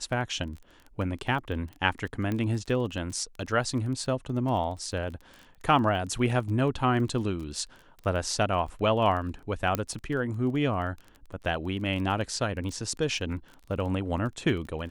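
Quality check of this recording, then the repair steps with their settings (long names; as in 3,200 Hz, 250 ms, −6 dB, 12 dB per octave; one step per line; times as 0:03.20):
surface crackle 20 per second −36 dBFS
0:02.32: click −19 dBFS
0:09.75: click −11 dBFS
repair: click removal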